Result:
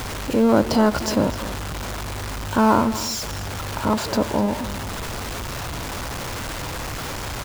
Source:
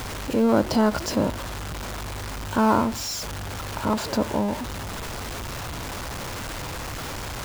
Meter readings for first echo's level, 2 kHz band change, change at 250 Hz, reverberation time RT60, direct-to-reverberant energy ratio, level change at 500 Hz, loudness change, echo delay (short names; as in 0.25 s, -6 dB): -14.5 dB, +3.0 dB, +3.0 dB, none, none, +3.0 dB, +3.0 dB, 0.251 s